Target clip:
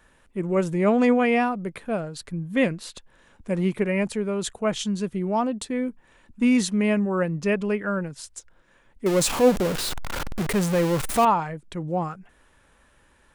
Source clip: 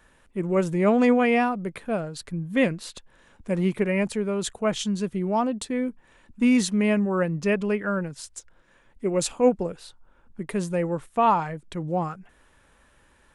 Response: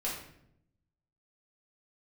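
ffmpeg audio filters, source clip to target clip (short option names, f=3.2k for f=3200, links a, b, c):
-filter_complex "[0:a]asettb=1/sr,asplit=3[a][b][c];[a]atrim=end=9.064[d];[b]atrim=start=9.06:end=11.25,asetpts=PTS-STARTPTS,afade=t=in:d=0.004:c=qsin,afade=t=out:st=2.186:d=0.004:c=qsin,aeval=exprs='val(0)+0.5*0.075*sgn(val(0))':c=same[e];[c]atrim=start=11.246[f];[d][e]acrossfade=d=0.004:c1=hsin:c2=qsin[g];[g][f]acrossfade=d=0.004:c1=qsin:c2=hsin"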